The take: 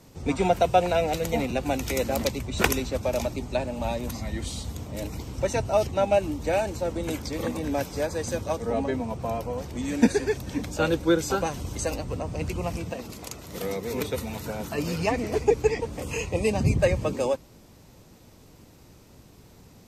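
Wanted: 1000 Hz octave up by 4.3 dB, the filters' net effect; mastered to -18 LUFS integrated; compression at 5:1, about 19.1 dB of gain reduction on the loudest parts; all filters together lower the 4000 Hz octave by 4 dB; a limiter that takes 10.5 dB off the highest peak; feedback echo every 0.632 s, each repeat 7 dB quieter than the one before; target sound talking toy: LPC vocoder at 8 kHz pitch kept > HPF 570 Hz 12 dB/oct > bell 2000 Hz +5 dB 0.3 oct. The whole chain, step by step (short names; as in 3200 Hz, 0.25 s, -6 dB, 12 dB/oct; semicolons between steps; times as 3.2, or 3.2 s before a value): bell 1000 Hz +8 dB; bell 4000 Hz -6 dB; compressor 5:1, threshold -35 dBFS; limiter -28.5 dBFS; feedback echo 0.632 s, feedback 45%, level -7 dB; LPC vocoder at 8 kHz pitch kept; HPF 570 Hz 12 dB/oct; bell 2000 Hz +5 dB 0.3 oct; gain +25.5 dB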